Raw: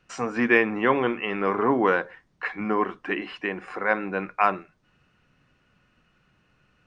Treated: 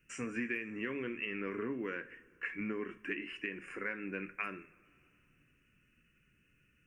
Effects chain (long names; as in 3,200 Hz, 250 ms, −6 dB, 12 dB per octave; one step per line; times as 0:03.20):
drawn EQ curve 100 Hz 0 dB, 200 Hz −4 dB, 290 Hz +2 dB, 540 Hz −9 dB, 790 Hz −24 dB, 1,600 Hz −2 dB, 2,700 Hz +4 dB, 3,900 Hz −22 dB, 5,700 Hz −4 dB, 11,000 Hz +11 dB
downward compressor 10 to 1, threshold −29 dBFS, peak gain reduction 15 dB
on a send: convolution reverb, pre-delay 3 ms, DRR 9 dB
on the sum: level −5.5 dB